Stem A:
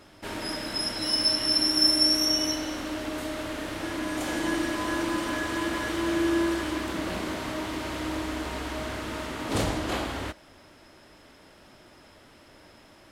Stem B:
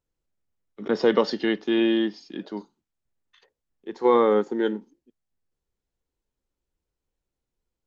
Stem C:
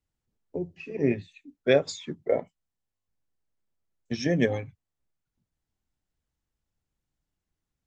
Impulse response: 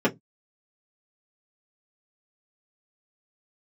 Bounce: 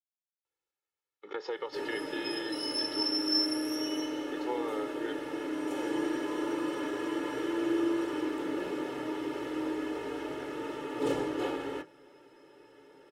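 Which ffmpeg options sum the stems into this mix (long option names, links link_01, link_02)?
-filter_complex "[0:a]adelay=1500,volume=-19dB,asplit=2[link_01][link_02];[link_02]volume=-3.5dB[link_03];[1:a]highpass=frequency=1100:poles=1,highshelf=frequency=4400:gain=-9.5,acompressor=threshold=-37dB:ratio=5,adelay=450,volume=0dB[link_04];[3:a]atrim=start_sample=2205[link_05];[link_03][link_05]afir=irnorm=-1:irlink=0[link_06];[link_01][link_04][link_06]amix=inputs=3:normalize=0,lowshelf=frequency=310:gain=-5,aecho=1:1:2.3:0.91"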